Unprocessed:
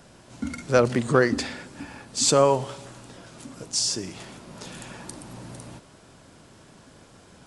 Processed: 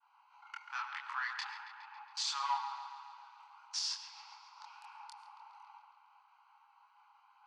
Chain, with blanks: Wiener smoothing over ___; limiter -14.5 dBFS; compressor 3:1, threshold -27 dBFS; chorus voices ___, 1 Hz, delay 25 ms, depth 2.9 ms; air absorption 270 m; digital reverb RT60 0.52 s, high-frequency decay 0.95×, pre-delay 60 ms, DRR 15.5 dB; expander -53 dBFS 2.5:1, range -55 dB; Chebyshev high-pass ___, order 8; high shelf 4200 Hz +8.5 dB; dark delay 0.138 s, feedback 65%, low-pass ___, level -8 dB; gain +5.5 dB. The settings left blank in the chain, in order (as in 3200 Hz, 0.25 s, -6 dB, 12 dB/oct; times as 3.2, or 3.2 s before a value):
25 samples, 2, 820 Hz, 3300 Hz